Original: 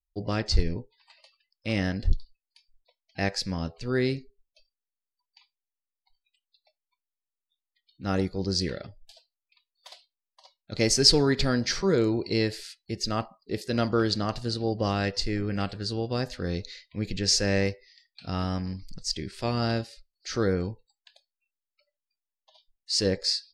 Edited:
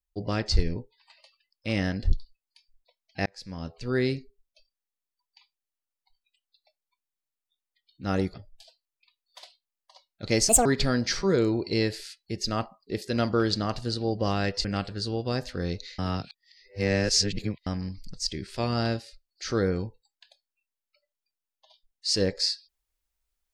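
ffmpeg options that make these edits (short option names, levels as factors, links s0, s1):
-filter_complex "[0:a]asplit=8[s0][s1][s2][s3][s4][s5][s6][s7];[s0]atrim=end=3.26,asetpts=PTS-STARTPTS,afade=t=out:st=3.256:d=0.004:c=hsin[s8];[s1]atrim=start=3.26:end=8.342,asetpts=PTS-STARTPTS,afade=t=in:d=0.62[s9];[s2]atrim=start=8.828:end=10.984[s10];[s3]atrim=start=10.98:end=11.25,asetpts=PTS-STARTPTS,asetrate=72324,aresample=44100,atrim=end_sample=7260,asetpts=PTS-STARTPTS[s11];[s4]atrim=start=11.246:end=15.242[s12];[s5]atrim=start=15.488:end=16.832[s13];[s6]atrim=start=16.828:end=18.512,asetpts=PTS-STARTPTS,areverse[s14];[s7]atrim=start=18.508[s15];[s8][s9]concat=n=2:v=0:a=1[s16];[s16][s10]acrossfade=d=0.004:c1=hsin:c2=hsin[s17];[s17][s11]acrossfade=d=0.004:c1=hsin:c2=hsin[s18];[s18][s12]acrossfade=d=0.004:c1=hsin:c2=hsin[s19];[s19][s13]acrossfade=d=0.004:c1=hsin:c2=hsin[s20];[s20][s14]acrossfade=d=0.004:c1=hsin:c2=hsin[s21];[s21][s15]acrossfade=d=0.004:c1=hsin:c2=hsin"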